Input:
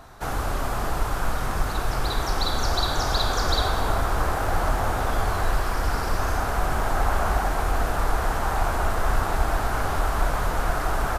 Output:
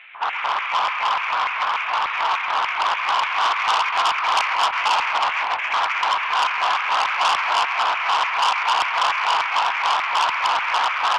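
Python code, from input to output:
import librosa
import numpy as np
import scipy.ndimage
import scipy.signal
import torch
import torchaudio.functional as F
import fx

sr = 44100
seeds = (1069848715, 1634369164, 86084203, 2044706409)

y = fx.cvsd(x, sr, bps=16000)
y = fx.low_shelf(y, sr, hz=97.0, db=11.5)
y = fx.over_compress(y, sr, threshold_db=-14.0, ratio=-0.5, at=(3.78, 6.01))
y = fx.chorus_voices(y, sr, voices=4, hz=0.77, base_ms=16, depth_ms=3.2, mix_pct=25)
y = fx.filter_lfo_highpass(y, sr, shape='square', hz=3.4, low_hz=990.0, high_hz=2300.0, q=5.2)
y = fx.echo_split(y, sr, split_hz=1100.0, low_ms=275, high_ms=132, feedback_pct=52, wet_db=-6.0)
y = fx.transformer_sat(y, sr, knee_hz=3700.0)
y = y * 10.0 ** (6.5 / 20.0)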